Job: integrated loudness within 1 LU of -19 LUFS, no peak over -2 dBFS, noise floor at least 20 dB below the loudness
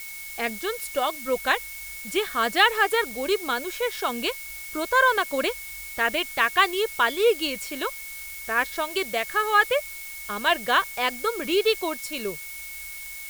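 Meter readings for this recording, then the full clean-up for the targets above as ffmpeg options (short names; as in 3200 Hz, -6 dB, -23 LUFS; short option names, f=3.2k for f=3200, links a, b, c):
steady tone 2200 Hz; tone level -39 dBFS; noise floor -38 dBFS; noise floor target -45 dBFS; loudness -24.5 LUFS; peak -4.0 dBFS; loudness target -19.0 LUFS
-> -af "bandreject=f=2.2k:w=30"
-af "afftdn=nr=7:nf=-38"
-af "volume=5.5dB,alimiter=limit=-2dB:level=0:latency=1"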